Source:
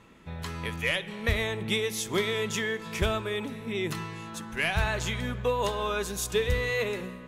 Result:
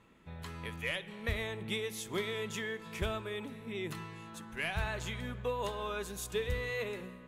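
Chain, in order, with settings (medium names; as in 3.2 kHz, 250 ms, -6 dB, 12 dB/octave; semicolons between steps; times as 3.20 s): peaking EQ 5.6 kHz -4 dB 0.65 oct; trim -8 dB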